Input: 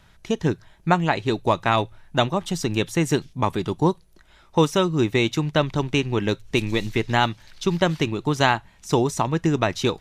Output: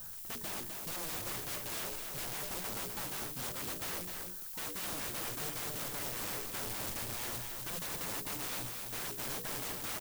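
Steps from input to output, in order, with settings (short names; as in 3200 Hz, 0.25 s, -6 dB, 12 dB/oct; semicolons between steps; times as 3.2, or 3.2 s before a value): steep low-pass 1800 Hz 72 dB/oct; bell 66 Hz -9 dB 0.54 oct; notches 60/120/180/240/300/360/420/480/540/600 Hz; reverse; compressor 8:1, threshold -31 dBFS, peak gain reduction 17.5 dB; reverse; added noise violet -46 dBFS; wrapped overs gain 35 dB; on a send: echo 0.254 s -5 dB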